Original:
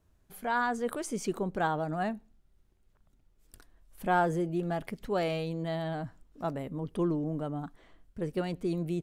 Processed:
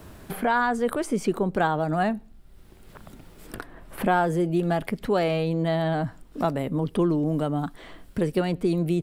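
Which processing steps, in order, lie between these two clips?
peaking EQ 6.4 kHz -5.5 dB 0.37 oct; three bands compressed up and down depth 70%; trim +7.5 dB

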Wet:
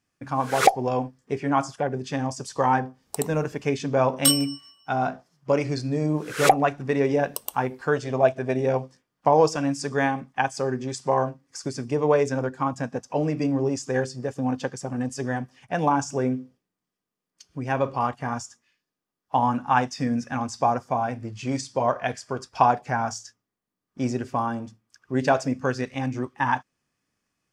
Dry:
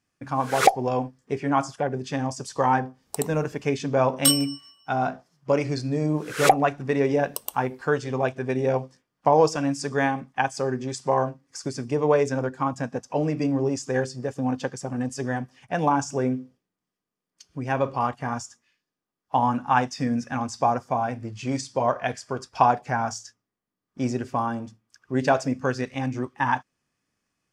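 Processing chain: 7.96–8.60 s: peaking EQ 640 Hz +11 dB 0.25 oct

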